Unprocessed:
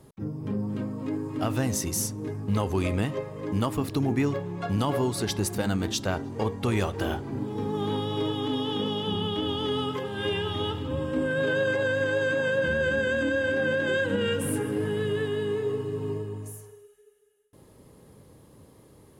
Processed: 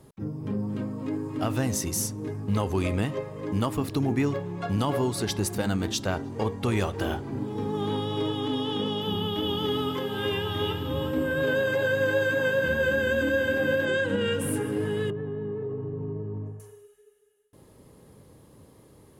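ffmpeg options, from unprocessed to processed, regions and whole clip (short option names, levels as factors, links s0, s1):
-filter_complex "[0:a]asettb=1/sr,asplit=3[s0][s1][s2];[s0]atrim=end=9.014[s3];[s1]atrim=start=9.01:end=13.85,asetpts=PTS-STARTPTS,afade=t=in:d=0.004:c=qsin,afade=t=out:st=4.836:d=0.004:c=qsin,aeval=exprs='val(0)+0.00141*sin(2*PI*13000*n/s)':c=same,aecho=1:1:357:0.422,atrim=end_sample=213444[s4];[s2]atrim=start=13.846[s5];[s3][s4]acrossfade=d=0.004:c1=hsin:c2=qsin[s6];[s6][s5]acrossfade=d=0.004:c1=qsin:c2=hsin,asettb=1/sr,asplit=3[s7][s8][s9];[s7]atrim=end=15.104[s10];[s8]atrim=start=15.1:end=16.6,asetpts=PTS-STARTPTS,afade=t=in:d=0.004:c=qsin,afade=t=out:st=1.496:d=0.004:c=qsin,lowpass=1100,equalizer=f=160:t=o:w=1.1:g=8,acompressor=threshold=0.0355:ratio=5:attack=3.2:release=140:knee=1:detection=peak[s11];[s9]atrim=start=16.596[s12];[s10][s11]acrossfade=d=0.004:c1=hsin:c2=qsin[s13];[s13][s12]acrossfade=d=0.004:c1=qsin:c2=hsin"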